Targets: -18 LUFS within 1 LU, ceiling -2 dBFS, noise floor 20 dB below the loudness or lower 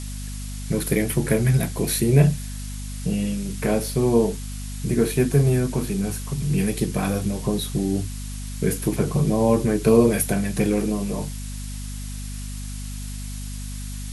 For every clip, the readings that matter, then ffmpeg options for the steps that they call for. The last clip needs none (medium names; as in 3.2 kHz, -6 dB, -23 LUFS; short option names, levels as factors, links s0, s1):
hum 50 Hz; highest harmonic 250 Hz; hum level -30 dBFS; noise floor -32 dBFS; noise floor target -43 dBFS; loudness -22.5 LUFS; peak level -3.5 dBFS; loudness target -18.0 LUFS
-> -af "bandreject=f=50:t=h:w=4,bandreject=f=100:t=h:w=4,bandreject=f=150:t=h:w=4,bandreject=f=200:t=h:w=4,bandreject=f=250:t=h:w=4"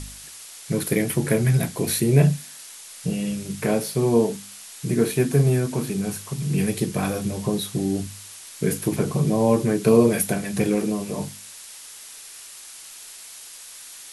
hum not found; noise floor -42 dBFS; noise floor target -43 dBFS
-> -af "afftdn=nr=6:nf=-42"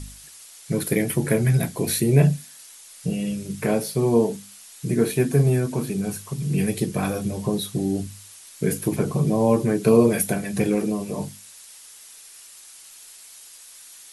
noise floor -46 dBFS; loudness -22.5 LUFS; peak level -4.5 dBFS; loudness target -18.0 LUFS
-> -af "volume=1.68,alimiter=limit=0.794:level=0:latency=1"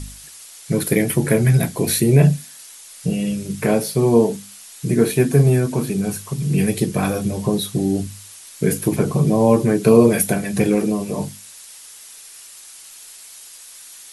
loudness -18.5 LUFS; peak level -2.0 dBFS; noise floor -41 dBFS